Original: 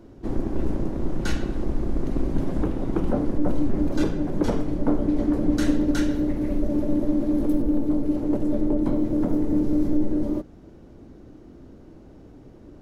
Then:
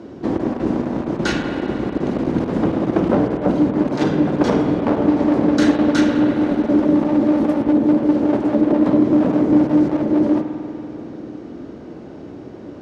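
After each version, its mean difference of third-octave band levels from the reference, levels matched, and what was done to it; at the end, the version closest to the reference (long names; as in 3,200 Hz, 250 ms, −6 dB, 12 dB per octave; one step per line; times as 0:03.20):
4.0 dB: in parallel at −2.5 dB: downward compressor, threshold −28 dBFS, peak gain reduction 13 dB
on the sum: asymmetric clip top −22.5 dBFS
band-pass filter 160–5,700 Hz
spring reverb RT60 3 s, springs 49 ms, chirp 50 ms, DRR 5 dB
level +8 dB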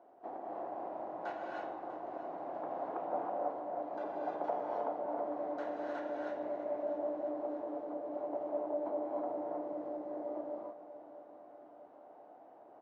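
9.0 dB: downward compressor, threshold −21 dBFS, peak gain reduction 7.5 dB
four-pole ladder band-pass 790 Hz, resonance 70%
repeating echo 646 ms, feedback 57%, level −15 dB
reverb whose tail is shaped and stops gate 340 ms rising, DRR −1.5 dB
level +4 dB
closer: first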